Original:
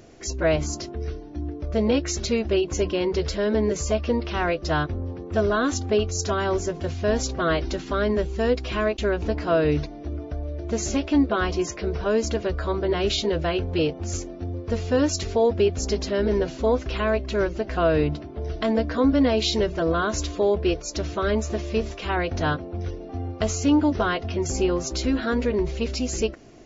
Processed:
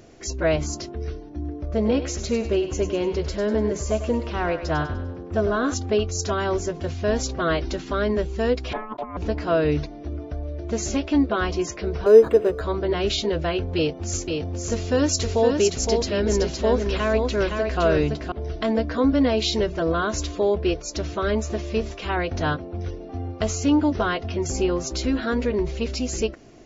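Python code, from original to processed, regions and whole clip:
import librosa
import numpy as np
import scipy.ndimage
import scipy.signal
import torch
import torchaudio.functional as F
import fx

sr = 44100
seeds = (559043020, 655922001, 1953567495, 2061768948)

y = fx.chain(x, sr, fx.peak_eq(hz=3800.0, db=-5.0, octaves=2.2),
    fx.echo_thinned(ms=99, feedback_pct=45, hz=530.0, wet_db=-9), at=(1.29, 5.74))
y = fx.chain(y, sr, fx.lowpass(hz=1100.0, slope=12),
    fx.over_compress(threshold_db=-27.0, ratio=-0.5),
    fx.ring_mod(carrier_hz=650.0), at=(8.73, 9.17))
y = fx.chain(y, sr, fx.highpass(hz=170.0, slope=6),
    fx.peak_eq(hz=440.0, db=14.0, octaves=0.4),
    fx.resample_linear(factor=8), at=(12.06, 12.61))
y = fx.chain(y, sr, fx.high_shelf(hz=5100.0, db=7.5),
    fx.echo_single(ms=515, db=-4.5), at=(13.76, 18.32))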